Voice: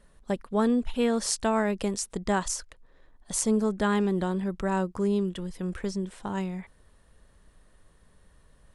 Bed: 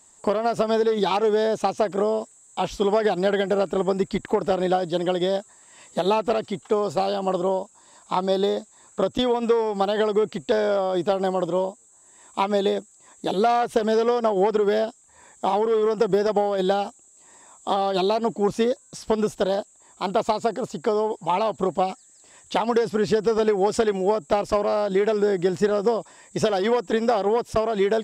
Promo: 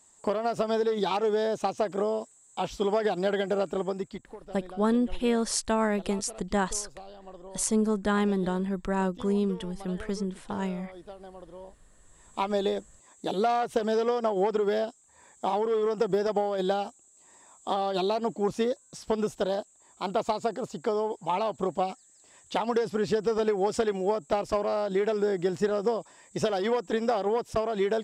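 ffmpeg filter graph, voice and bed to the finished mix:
-filter_complex "[0:a]adelay=4250,volume=0.944[s0];[1:a]volume=3.76,afade=t=out:st=3.68:d=0.66:silence=0.141254,afade=t=in:st=11.59:d=0.91:silence=0.141254[s1];[s0][s1]amix=inputs=2:normalize=0"

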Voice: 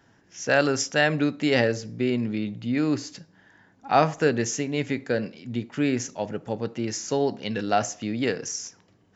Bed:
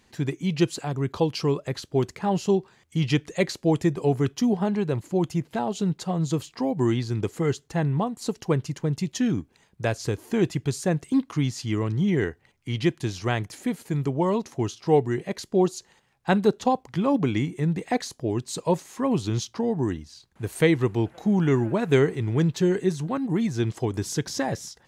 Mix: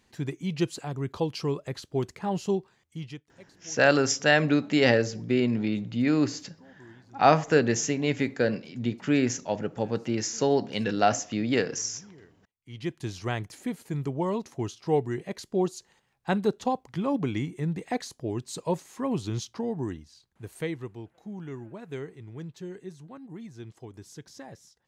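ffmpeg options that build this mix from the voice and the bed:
-filter_complex "[0:a]adelay=3300,volume=1.06[s0];[1:a]volume=8.41,afade=t=out:st=2.53:d=0.72:silence=0.0668344,afade=t=in:st=12.57:d=0.54:silence=0.0668344,afade=t=out:st=19.55:d=1.47:silence=0.237137[s1];[s0][s1]amix=inputs=2:normalize=0"

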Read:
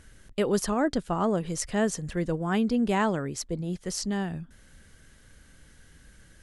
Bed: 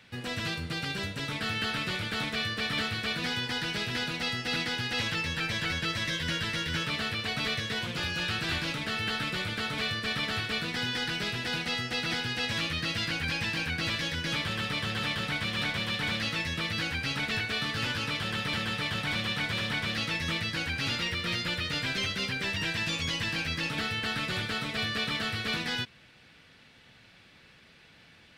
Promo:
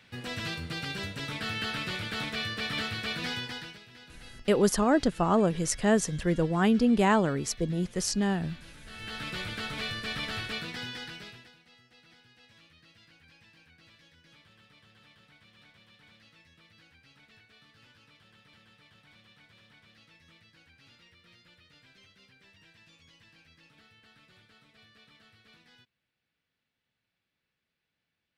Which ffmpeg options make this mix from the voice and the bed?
-filter_complex "[0:a]adelay=4100,volume=1.26[s0];[1:a]volume=5.31,afade=t=out:st=3.31:d=0.49:silence=0.125893,afade=t=in:st=8.85:d=0.51:silence=0.149624,afade=t=out:st=10.5:d=1.04:silence=0.0595662[s1];[s0][s1]amix=inputs=2:normalize=0"

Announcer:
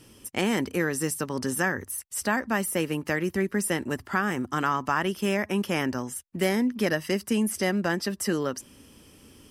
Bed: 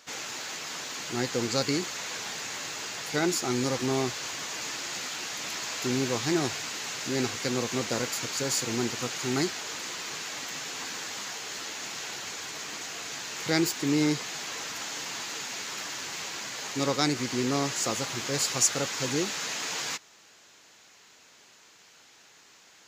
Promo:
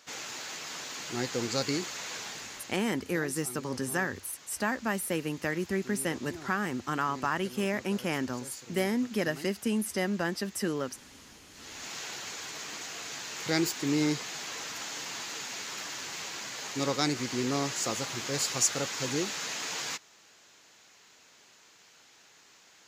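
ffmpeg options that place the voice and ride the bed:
-filter_complex "[0:a]adelay=2350,volume=0.596[s0];[1:a]volume=3.98,afade=t=out:st=2.17:d=0.7:silence=0.188365,afade=t=in:st=11.53:d=0.41:silence=0.177828[s1];[s0][s1]amix=inputs=2:normalize=0"

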